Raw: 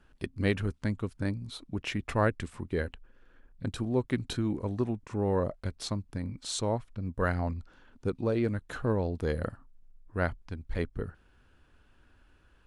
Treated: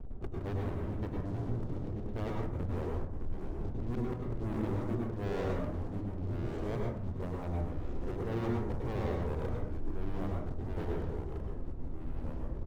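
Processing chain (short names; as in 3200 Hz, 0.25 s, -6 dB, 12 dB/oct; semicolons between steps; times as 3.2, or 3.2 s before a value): elliptic low-pass 700 Hz, stop band 40 dB; tilt -2 dB/oct; comb 2.3 ms, depth 32%; auto swell 0.642 s; limiter -31.5 dBFS, peak gain reduction 9 dB; sample leveller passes 5; plate-style reverb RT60 0.64 s, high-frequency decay 0.45×, pre-delay 90 ms, DRR -1 dB; echoes that change speed 0.121 s, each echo -3 st, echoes 3, each echo -6 dB; gain -4 dB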